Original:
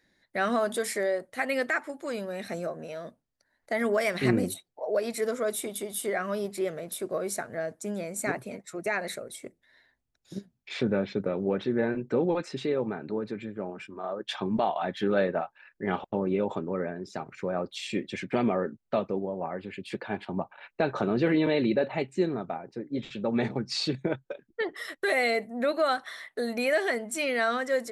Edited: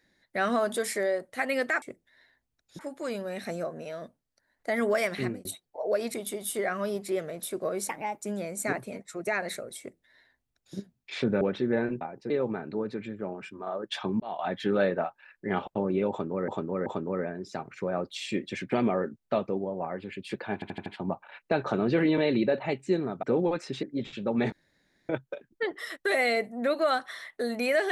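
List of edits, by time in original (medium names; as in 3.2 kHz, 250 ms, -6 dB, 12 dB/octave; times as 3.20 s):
4.05–4.48 s: fade out
5.17–5.63 s: delete
7.38–7.81 s: speed 130%
9.38–10.35 s: copy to 1.82 s
11.00–11.47 s: delete
12.07–12.67 s: swap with 22.52–22.81 s
14.57–14.84 s: fade in
16.47–16.85 s: loop, 3 plays
20.15 s: stutter 0.08 s, 5 plays
23.50–24.07 s: room tone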